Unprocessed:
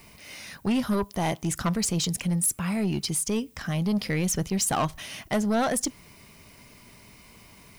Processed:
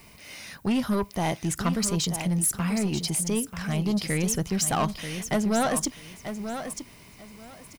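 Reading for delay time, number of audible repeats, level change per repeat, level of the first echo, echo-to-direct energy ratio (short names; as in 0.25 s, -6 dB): 0.938 s, 2, -14.0 dB, -9.0 dB, -9.0 dB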